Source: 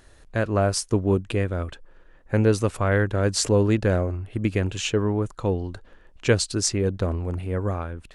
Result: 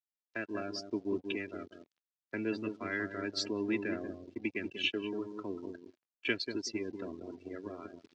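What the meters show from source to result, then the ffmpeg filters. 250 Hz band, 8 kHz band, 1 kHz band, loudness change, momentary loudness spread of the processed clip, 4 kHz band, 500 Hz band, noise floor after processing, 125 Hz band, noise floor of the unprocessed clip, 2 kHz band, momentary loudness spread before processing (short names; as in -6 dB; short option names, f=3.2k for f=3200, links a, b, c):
-11.0 dB, -20.5 dB, -15.5 dB, -13.5 dB, 11 LU, -7.5 dB, -15.0 dB, under -85 dBFS, -27.5 dB, -52 dBFS, -7.0 dB, 8 LU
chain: -filter_complex "[0:a]aecho=1:1:3:0.67,acrossover=split=330|1800[a][b][c];[b]acompressor=threshold=-39dB:ratio=8[d];[a][d][c]amix=inputs=3:normalize=0,acrossover=split=210 3000:gain=0.0891 1 0.0891[e][f][g];[e][f][g]amix=inputs=3:normalize=0,asplit=2[h][i];[i]adelay=189,lowpass=f=990:p=1,volume=-4.5dB,asplit=2[j][k];[k]adelay=189,lowpass=f=990:p=1,volume=0.35,asplit=2[l][m];[m]adelay=189,lowpass=f=990:p=1,volume=0.35,asplit=2[n][o];[o]adelay=189,lowpass=f=990:p=1,volume=0.35[p];[h][j][l][n][p]amix=inputs=5:normalize=0,aeval=exprs='sgn(val(0))*max(abs(val(0))-0.0075,0)':c=same,acrusher=bits=7:mix=0:aa=0.5,afftdn=nr=23:nf=-40,highshelf=f=3.8k:g=10.5,crystalizer=i=4:c=0,lowpass=f=5.3k:w=0.5412,lowpass=f=5.3k:w=1.3066,areverse,acompressor=mode=upward:threshold=-42dB:ratio=2.5,areverse,highpass=110,volume=-7dB"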